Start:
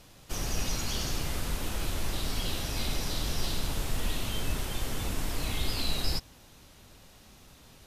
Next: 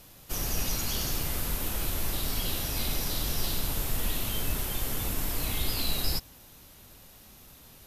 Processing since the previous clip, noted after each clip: peaking EQ 13 kHz +13 dB 0.58 oct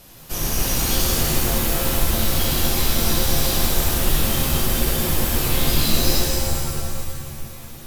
pitch-shifted reverb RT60 2.3 s, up +7 st, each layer -2 dB, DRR -2.5 dB; trim +4.5 dB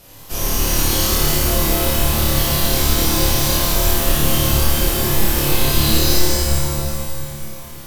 flutter echo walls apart 4.8 m, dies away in 0.65 s

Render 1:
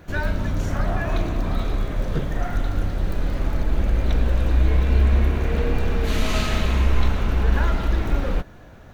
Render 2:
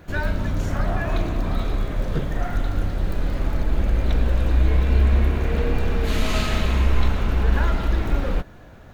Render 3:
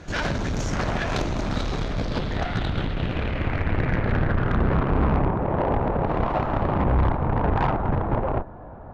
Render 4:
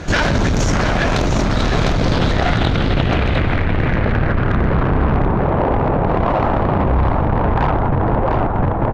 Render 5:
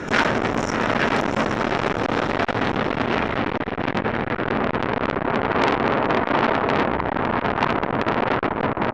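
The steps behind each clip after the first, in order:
band-stop 5.9 kHz, Q 24
Chebyshev shaper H 7 -9 dB, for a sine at -6 dBFS; low-pass sweep 6.2 kHz -> 910 Hz, 1.62–5.40 s; saturation -15.5 dBFS, distortion -9 dB
delay 703 ms -7 dB; in parallel at +1 dB: compressor with a negative ratio -27 dBFS, ratio -0.5; on the sum: trim +3.5 dB
delay 823 ms -10.5 dB; reverberation RT60 0.25 s, pre-delay 3 ms, DRR 4 dB; transformer saturation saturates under 2.3 kHz; trim -4 dB

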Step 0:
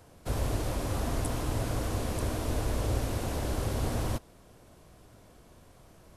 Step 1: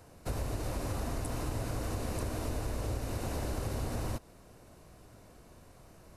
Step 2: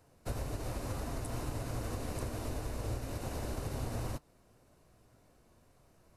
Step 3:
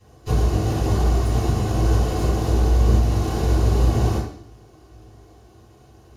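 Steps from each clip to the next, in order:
band-stop 3.3 kHz, Q 9; compression, threshold -31 dBFS, peak gain reduction 8 dB
flange 1.9 Hz, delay 6.6 ms, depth 2.5 ms, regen +77%; upward expansion 1.5:1, over -52 dBFS; trim +3.5 dB
comb filter that takes the minimum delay 2.7 ms; reverberation RT60 0.60 s, pre-delay 3 ms, DRR -10 dB

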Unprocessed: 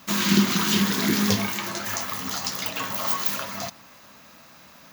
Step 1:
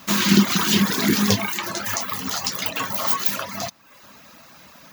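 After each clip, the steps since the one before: reverb removal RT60 0.7 s; trim +4.5 dB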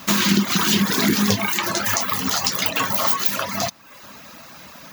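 compression 4:1, threshold -21 dBFS, peak gain reduction 10 dB; trim +5.5 dB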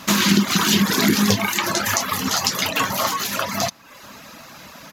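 resampled via 32 kHz; trim +1.5 dB

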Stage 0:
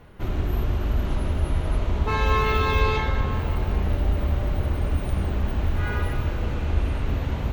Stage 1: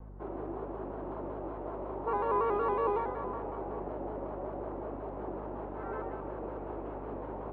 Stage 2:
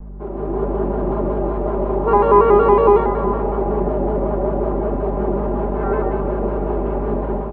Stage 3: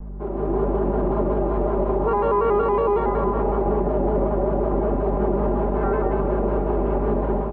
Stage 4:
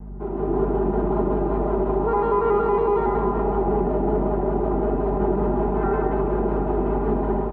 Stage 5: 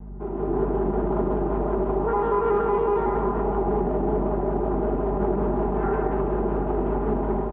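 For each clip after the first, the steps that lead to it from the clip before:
Chebyshev band-pass 350–960 Hz, order 2; hum 50 Hz, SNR 11 dB; vibrato with a chosen wave square 5.4 Hz, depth 100 cents; trim -2.5 dB
bass shelf 360 Hz +10 dB; comb 5 ms; level rider gain up to 9 dB; trim +3.5 dB
peak limiter -12.5 dBFS, peak gain reduction 11 dB
comb of notches 560 Hz; delay 79 ms -8 dB
resampled via 8 kHz; loudspeaker Doppler distortion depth 0.23 ms; trim -2 dB

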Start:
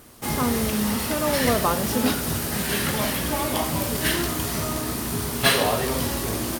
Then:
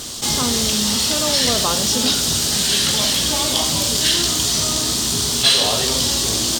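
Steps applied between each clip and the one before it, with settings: high-order bell 5 kHz +15.5 dB; level flattener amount 50%; trim -6.5 dB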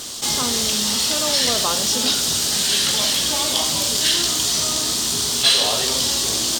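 bass shelf 240 Hz -8.5 dB; trim -1 dB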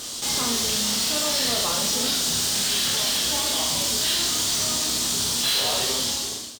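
fade out at the end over 0.75 s; hard clipper -19 dBFS, distortion -10 dB; reverse bouncing-ball echo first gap 30 ms, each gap 1.4×, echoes 5; trim -3.5 dB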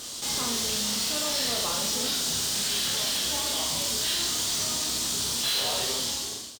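doubling 44 ms -13 dB; trim -4.5 dB

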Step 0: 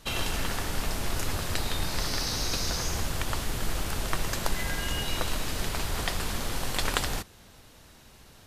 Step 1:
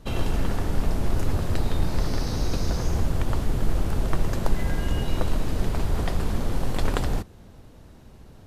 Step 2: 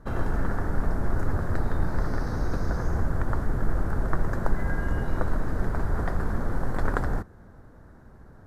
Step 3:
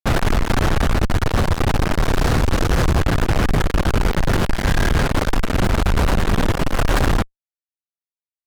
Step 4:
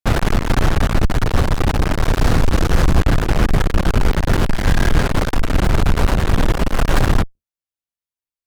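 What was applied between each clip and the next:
tilt shelf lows +8.5 dB
resonant high shelf 2.1 kHz -9.5 dB, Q 3; trim -2 dB
fuzz box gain 41 dB, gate -37 dBFS
octave divider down 2 oct, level +3 dB

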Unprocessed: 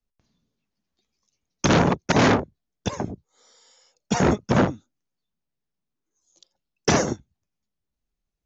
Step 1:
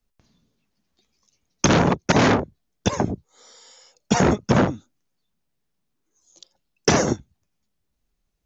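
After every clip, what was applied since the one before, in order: compression 3:1, threshold -23 dBFS, peak gain reduction 7.5 dB; trim +7.5 dB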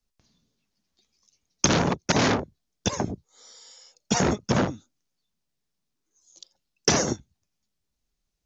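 peaking EQ 5.4 kHz +7 dB 1.5 oct; trim -5.5 dB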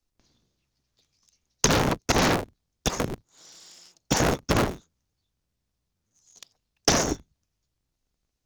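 cycle switcher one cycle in 3, inverted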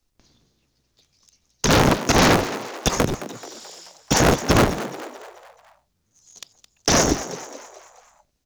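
peak limiter -13 dBFS, peak gain reduction 11 dB; frequency-shifting echo 216 ms, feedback 49%, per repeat +110 Hz, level -13.5 dB; trim +7.5 dB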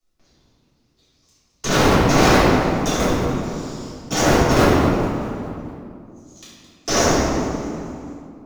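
reverberation RT60 2.3 s, pre-delay 3 ms, DRR -13 dB; trim -11 dB

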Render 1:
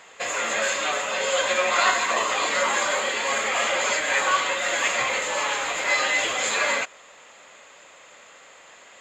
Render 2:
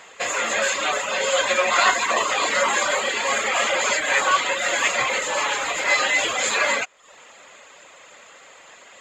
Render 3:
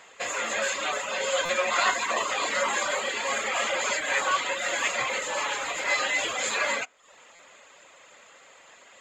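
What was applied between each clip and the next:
reverb removal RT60 0.54 s; trim +3.5 dB
on a send at -22 dB: reverberation RT60 0.40 s, pre-delay 3 ms; on the sum: buffer glitch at 1.45/7.35 s, samples 256, times 6; trim -6 dB

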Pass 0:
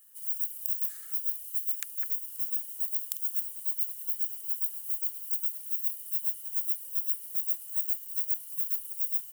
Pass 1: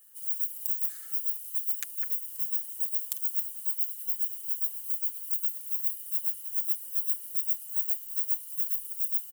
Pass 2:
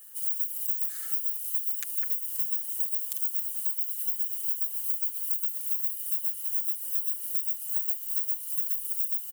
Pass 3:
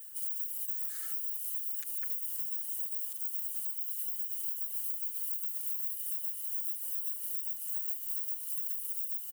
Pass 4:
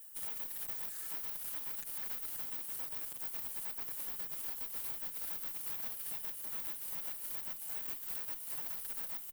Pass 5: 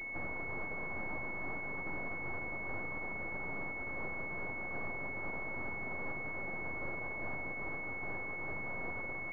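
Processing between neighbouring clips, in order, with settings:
comb 6.8 ms, depth 53%
bass shelf 180 Hz -5.5 dB; peak limiter -18 dBFS, peak gain reduction 10.5 dB; compression, threshold -33 dBFS, peak gain reduction 8.5 dB; trim +8 dB
peak limiter -21.5 dBFS, peak gain reduction 10.5 dB; pre-echo 235 ms -14 dB; trim -3 dB
valve stage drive 27 dB, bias 0.75; on a send at -17.5 dB: reverberation RT60 0.50 s, pre-delay 3 ms
frequency axis rescaled in octaves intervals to 109%; half-wave rectifier; class-D stage that switches slowly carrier 2.2 kHz; trim +16 dB

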